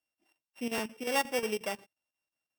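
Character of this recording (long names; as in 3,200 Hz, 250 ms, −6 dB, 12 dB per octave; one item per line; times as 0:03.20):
a buzz of ramps at a fixed pitch in blocks of 16 samples
chopped level 5.6 Hz, depth 65%, duty 80%
AC-3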